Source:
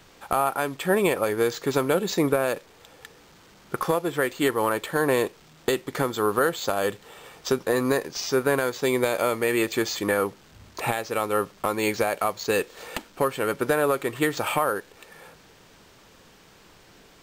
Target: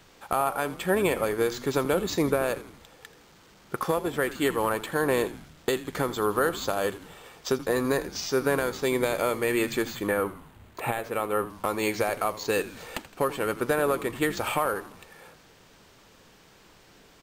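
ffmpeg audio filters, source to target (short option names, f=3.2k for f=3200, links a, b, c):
-filter_complex "[0:a]asettb=1/sr,asplit=3[a][b][c];[a]atrim=end=9.854[d];[b]atrim=start=9.85:end=11.5,asetpts=PTS-STARTPTS,afade=t=in:d=0.004:c=qsin,afade=t=out:st=1.646:d=0.004:c=qsin,equalizer=f=5.4k:t=o:w=0.87:g=-12.5[e];[c]atrim=start=11.496[f];[d][e]acrossfade=d=0.004:c1=hsin:c2=qsin[g];[g][f]acrossfade=d=0.004:c1=qsin:c2=hsin,asplit=2[h][i];[i]asplit=5[j][k][l][m][n];[j]adelay=82,afreqshift=-110,volume=-15.5dB[o];[k]adelay=164,afreqshift=-220,volume=-21.2dB[p];[l]adelay=246,afreqshift=-330,volume=-26.9dB[q];[m]adelay=328,afreqshift=-440,volume=-32.5dB[r];[n]adelay=410,afreqshift=-550,volume=-38.2dB[s];[o][p][q][r][s]amix=inputs=5:normalize=0[t];[h][t]amix=inputs=2:normalize=0,volume=-2.5dB"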